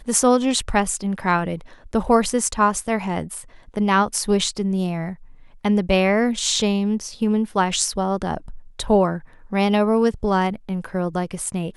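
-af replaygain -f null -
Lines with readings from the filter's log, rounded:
track_gain = +1.0 dB
track_peak = 0.602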